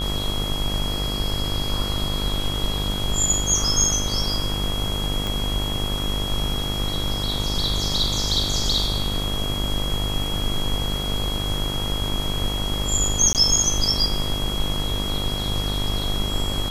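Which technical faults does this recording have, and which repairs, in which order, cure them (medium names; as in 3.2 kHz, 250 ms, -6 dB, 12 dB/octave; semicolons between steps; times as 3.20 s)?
buzz 50 Hz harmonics 27 -28 dBFS
whine 3.3 kHz -28 dBFS
5.27 s: pop
13.33–13.35 s: dropout 18 ms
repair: de-click; de-hum 50 Hz, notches 27; band-stop 3.3 kHz, Q 30; interpolate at 13.33 s, 18 ms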